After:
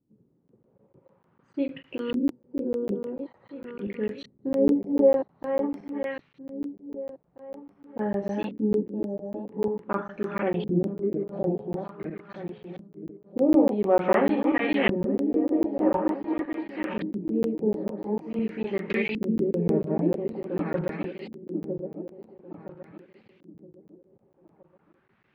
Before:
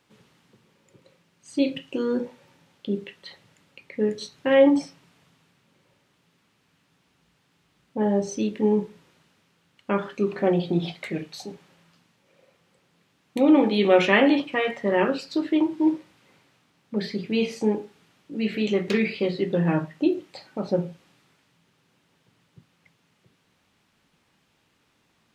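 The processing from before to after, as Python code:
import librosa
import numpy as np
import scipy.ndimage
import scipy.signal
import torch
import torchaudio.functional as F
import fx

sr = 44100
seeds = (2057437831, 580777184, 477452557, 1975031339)

y = fx.reverse_delay_fb(x, sr, ms=484, feedback_pct=62, wet_db=-1.5)
y = fx.filter_lfo_lowpass(y, sr, shape='saw_up', hz=0.47, low_hz=250.0, high_hz=2800.0, q=1.8)
y = fx.buffer_crackle(y, sr, first_s=0.48, period_s=0.15, block=512, kind='zero')
y = y * 10.0 ** (-6.0 / 20.0)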